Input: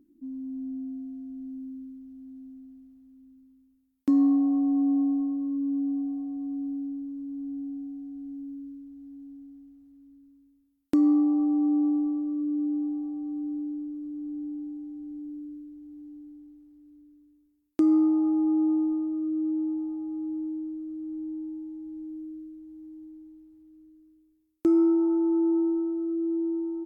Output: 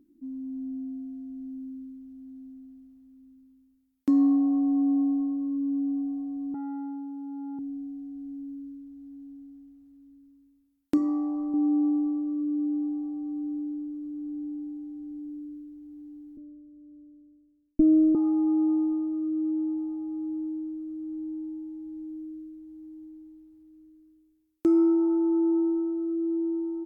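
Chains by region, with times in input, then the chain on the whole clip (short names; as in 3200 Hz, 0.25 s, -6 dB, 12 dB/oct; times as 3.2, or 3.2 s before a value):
6.54–7.59 HPF 120 Hz 24 dB/oct + core saturation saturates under 340 Hz
10.96–11.54 doubler 12 ms -5 dB + de-hum 83.24 Hz, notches 39
16.37–18.15 minimum comb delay 0.72 ms + synth low-pass 260 Hz, resonance Q 2.7
whole clip: dry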